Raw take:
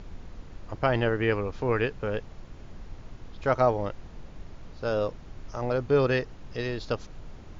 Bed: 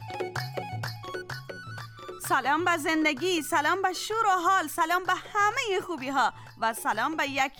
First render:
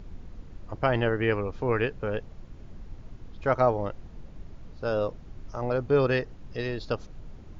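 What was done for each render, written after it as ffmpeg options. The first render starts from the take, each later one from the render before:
-af "afftdn=nr=6:nf=-46"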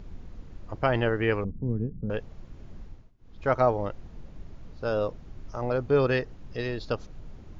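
-filter_complex "[0:a]asettb=1/sr,asplit=3[s0][s1][s2];[s0]atrim=end=1.444[s3];[s1]atrim=start=1.44:end=2.1,asetpts=PTS-STARTPTS,afade=t=in:d=0.004:c=qsin,afade=t=out:st=0.656:d=0.004:c=qsin,lowpass=f=200:t=q:w=2.5[s4];[s2]atrim=start=2.096[s5];[s3][s4]acrossfade=d=0.004:c1=hsin:c2=qsin[s6];[s6][s5]acrossfade=d=0.004:c1=qsin:c2=hsin,asplit=3[s7][s8][s9];[s7]atrim=end=3.12,asetpts=PTS-STARTPTS,afade=t=out:st=2.82:d=0.3:silence=0.0794328[s10];[s8]atrim=start=3.12:end=3.18,asetpts=PTS-STARTPTS,volume=0.0794[s11];[s9]atrim=start=3.18,asetpts=PTS-STARTPTS,afade=t=in:d=0.3:silence=0.0794328[s12];[s10][s11][s12]concat=n=3:v=0:a=1"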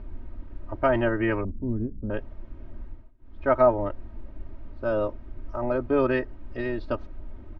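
-af "lowpass=2000,aecho=1:1:3.2:0.92"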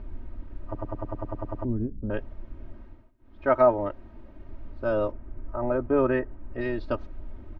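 -filter_complex "[0:a]asettb=1/sr,asplit=3[s0][s1][s2];[s0]atrim=end=2.724[s3];[s1]atrim=start=2.72:end=4.48,asetpts=PTS-STARTPTS,afade=t=in:d=0.004:c=qsin,afade=t=out:st=1.756:d=0.004:c=qsin,lowshelf=f=88:g=-9.5[s4];[s2]atrim=start=4.476[s5];[s3][s4]acrossfade=d=0.004:c1=hsin:c2=qsin[s6];[s6][s5]acrossfade=d=0.004:c1=qsin:c2=hsin,asplit=3[s7][s8][s9];[s7]afade=t=out:st=5.11:d=0.02[s10];[s8]lowpass=1900,afade=t=in:st=5.11:d=0.02,afade=t=out:st=6.6:d=0.02[s11];[s9]afade=t=in:st=6.6:d=0.02[s12];[s10][s11][s12]amix=inputs=3:normalize=0,asplit=11[s13][s14][s15][s16][s17][s18][s19][s20][s21][s22][s23];[s13]atrim=end=0.752[s24];[s14]atrim=start=0.648:end=0.752[s25];[s15]atrim=start=0.648:end=0.752[s26];[s16]atrim=start=0.648:end=0.752[s27];[s17]atrim=start=0.648:end=0.752[s28];[s18]atrim=start=0.648:end=0.752[s29];[s19]atrim=start=0.648:end=0.752[s30];[s20]atrim=start=0.648:end=0.752[s31];[s21]atrim=start=0.648:end=0.752[s32];[s22]atrim=start=0.648:end=0.752[s33];[s23]atrim=start=1.648[s34];[s24][s25]acrossfade=d=0.004:c1=hsin:c2=hsin[s35];[s35][s26]acrossfade=d=0.004:c1=hsin:c2=hsin[s36];[s36][s27]acrossfade=d=0.004:c1=hsin:c2=hsin[s37];[s37][s28]acrossfade=d=0.004:c1=hsin:c2=hsin[s38];[s38][s29]acrossfade=d=0.004:c1=hsin:c2=hsin[s39];[s39][s30]acrossfade=d=0.004:c1=hsin:c2=hsin[s40];[s40][s31]acrossfade=d=0.004:c1=hsin:c2=hsin[s41];[s41][s32]acrossfade=d=0.004:c1=hsin:c2=hsin[s42];[s42][s33]acrossfade=d=0.004:c1=hsin:c2=hsin[s43];[s43][s34]acrossfade=d=0.004:c1=hsin:c2=hsin"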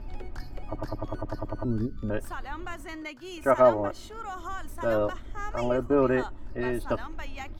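-filter_complex "[1:a]volume=0.2[s0];[0:a][s0]amix=inputs=2:normalize=0"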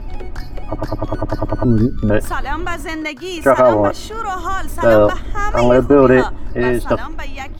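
-af "dynaudnorm=f=210:g=13:m=1.78,alimiter=level_in=3.55:limit=0.891:release=50:level=0:latency=1"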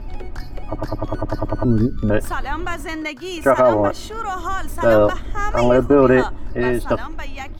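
-af "volume=0.708"

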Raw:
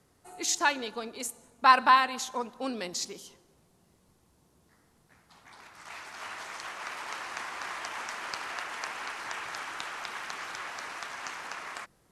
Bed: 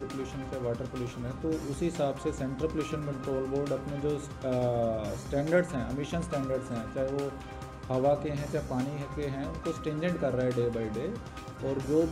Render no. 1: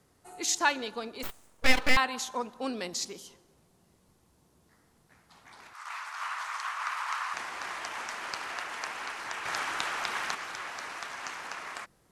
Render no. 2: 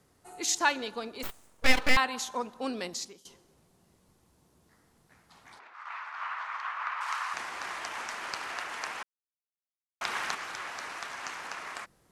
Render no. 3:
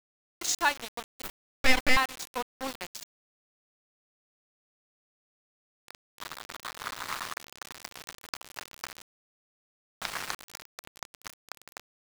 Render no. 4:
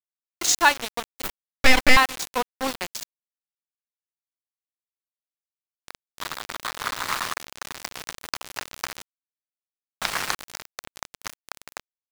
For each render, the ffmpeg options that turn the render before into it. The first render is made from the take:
-filter_complex "[0:a]asettb=1/sr,asplit=3[s0][s1][s2];[s0]atrim=end=1.234[s3];[s1]atrim=start=1.23:end=1.97,asetpts=PTS-STARTPTS,afade=t=in:d=0.004:c=qsin,afade=t=out:st=0.736:d=0.004:c=qsin,aeval=exprs='abs(val(0))':c=same[s4];[s2]atrim=start=1.966[s5];[s3][s4]acrossfade=d=0.004:c1=hsin:c2=qsin[s6];[s6][s5]acrossfade=d=0.004:c1=qsin:c2=hsin,asettb=1/sr,asplit=3[s7][s8][s9];[s7]atrim=end=5.734[s10];[s8]atrim=start=5.73:end=7.34,asetpts=PTS-STARTPTS,afade=t=in:d=0.004:c=qsin,afade=t=out:st=1.606:d=0.004:c=qsin,highpass=f=1100:t=q:w=2.7[s11];[s9]atrim=start=7.336[s12];[s10][s11]acrossfade=d=0.004:c1=hsin:c2=qsin[s13];[s13][s12]acrossfade=d=0.004:c1=qsin:c2=hsin,asettb=1/sr,asplit=3[s14][s15][s16];[s14]atrim=end=9.454[s17];[s15]atrim=start=9.45:end=10.35,asetpts=PTS-STARTPTS,afade=t=in:d=0.004:c=qsin,afade=t=out:st=0.896:d=0.004:c=qsin,acontrast=35[s18];[s16]atrim=start=10.346[s19];[s17][s18]acrossfade=d=0.004:c1=hsin:c2=qsin[s20];[s20][s19]acrossfade=d=0.004:c1=qsin:c2=hsin"
-filter_complex "[0:a]asplit=3[s0][s1][s2];[s0]afade=t=out:st=5.58:d=0.02[s3];[s1]highpass=410,lowpass=2600,afade=t=in:st=5.58:d=0.02,afade=t=out:st=7:d=0.02[s4];[s2]afade=t=in:st=7:d=0.02[s5];[s3][s4][s5]amix=inputs=3:normalize=0,asplit=4[s6][s7][s8][s9];[s6]atrim=end=3.25,asetpts=PTS-STARTPTS,afade=t=out:st=2.85:d=0.4:silence=0.125893[s10];[s7]atrim=start=3.25:end=9.03,asetpts=PTS-STARTPTS,afade=t=in:d=0.004:c=hsin:silence=0.125893,afade=t=out:st=5.776:d=0.004:c=hsin[s11];[s8]atrim=start=9.03:end=10.01,asetpts=PTS-STARTPTS,volume=0[s12];[s9]atrim=start=10.01,asetpts=PTS-STARTPTS,afade=t=in:d=0.004:c=hsin[s13];[s10][s11][s12][s13]concat=n=4:v=0:a=1"
-af "aeval=exprs='val(0)*gte(abs(val(0)),0.0316)':c=same"
-af "volume=2.66,alimiter=limit=0.794:level=0:latency=1"

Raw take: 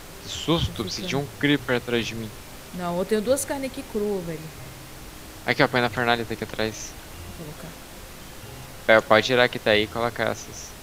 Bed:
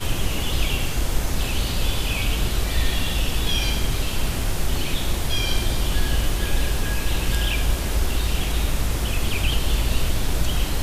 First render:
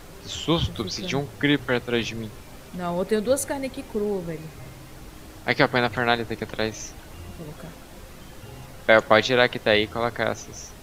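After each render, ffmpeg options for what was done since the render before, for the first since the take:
-af "afftdn=nr=6:nf=-42"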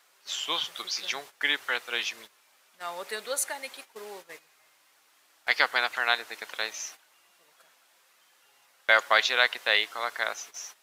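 -af "highpass=1100,agate=range=0.224:threshold=0.00631:ratio=16:detection=peak"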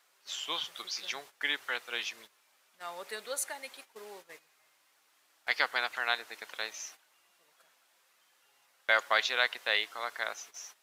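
-af "volume=0.531"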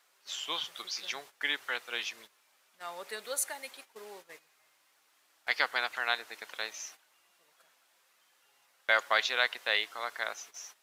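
-filter_complex "[0:a]asettb=1/sr,asplit=3[s0][s1][s2];[s0]atrim=end=3.244[s3];[s1]atrim=start=3.24:end=3.71,asetpts=PTS-STARTPTS,afade=t=in:d=0.004:c=qsin,afade=t=out:st=0.466:d=0.004:c=qsin,highshelf=f=9000:g=5.5[s4];[s2]atrim=start=3.706[s5];[s3][s4]acrossfade=d=0.004:c1=hsin:c2=qsin[s6];[s6][s5]acrossfade=d=0.004:c1=qsin:c2=hsin"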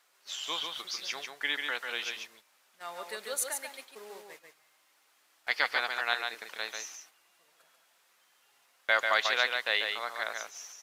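-af "aecho=1:1:142:0.562"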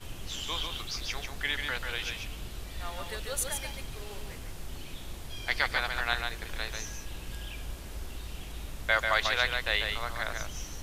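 -filter_complex "[1:a]volume=0.126[s0];[0:a][s0]amix=inputs=2:normalize=0"

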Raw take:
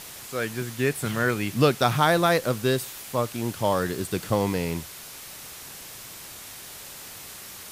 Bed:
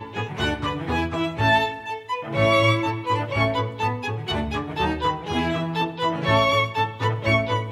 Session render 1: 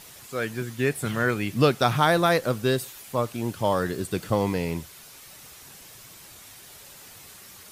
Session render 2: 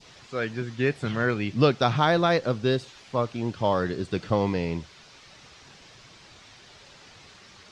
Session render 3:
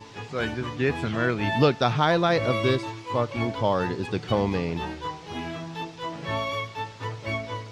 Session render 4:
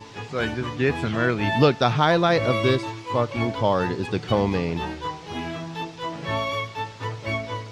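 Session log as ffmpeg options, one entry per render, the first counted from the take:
-af "afftdn=nr=7:nf=-42"
-af "lowpass=f=5500:w=0.5412,lowpass=f=5500:w=1.3066,adynamicequalizer=threshold=0.0126:dfrequency=1600:dqfactor=0.75:tfrequency=1600:tqfactor=0.75:attack=5:release=100:ratio=0.375:range=1.5:mode=cutabove:tftype=bell"
-filter_complex "[1:a]volume=0.316[s0];[0:a][s0]amix=inputs=2:normalize=0"
-af "volume=1.33"

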